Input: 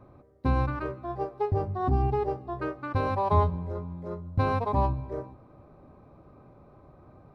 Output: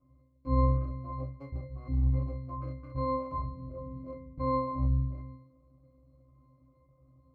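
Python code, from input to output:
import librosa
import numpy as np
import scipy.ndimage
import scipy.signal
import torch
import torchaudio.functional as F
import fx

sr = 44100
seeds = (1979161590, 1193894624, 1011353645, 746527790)

y = fx.cycle_switch(x, sr, every=3, mode='muted')
y = fx.rider(y, sr, range_db=4, speed_s=0.5)
y = fx.octave_resonator(y, sr, note='C', decay_s=0.55)
y = F.gain(torch.from_numpy(y), 7.0).numpy()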